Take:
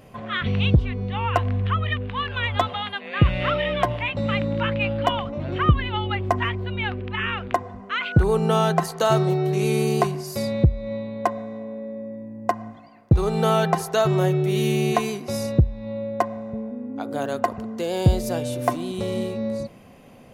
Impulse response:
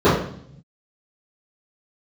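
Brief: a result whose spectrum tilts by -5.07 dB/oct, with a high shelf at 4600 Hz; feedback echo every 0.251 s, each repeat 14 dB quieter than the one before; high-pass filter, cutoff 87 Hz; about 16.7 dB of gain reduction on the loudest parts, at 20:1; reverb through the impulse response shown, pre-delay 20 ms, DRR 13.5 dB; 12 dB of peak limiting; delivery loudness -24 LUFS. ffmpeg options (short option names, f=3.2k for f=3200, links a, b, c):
-filter_complex "[0:a]highpass=87,highshelf=f=4.6k:g=-4.5,acompressor=threshold=-28dB:ratio=20,alimiter=limit=-24dB:level=0:latency=1,aecho=1:1:251|502:0.2|0.0399,asplit=2[a][b];[1:a]atrim=start_sample=2205,adelay=20[c];[b][c]afir=irnorm=-1:irlink=0,volume=-39.5dB[d];[a][d]amix=inputs=2:normalize=0,volume=10dB"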